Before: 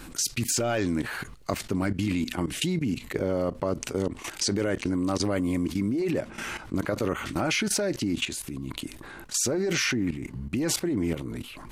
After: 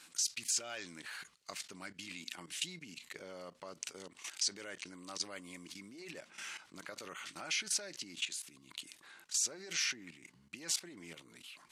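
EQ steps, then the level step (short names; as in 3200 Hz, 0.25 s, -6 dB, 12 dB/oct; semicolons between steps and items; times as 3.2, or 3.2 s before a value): air absorption 78 m; differentiator; bell 170 Hz +7 dB 0.42 oct; +1.0 dB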